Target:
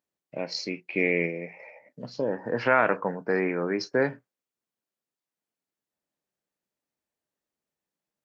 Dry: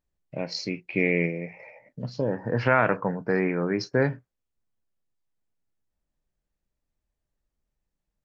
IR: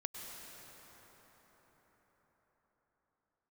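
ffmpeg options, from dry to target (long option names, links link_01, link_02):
-af "highpass=240"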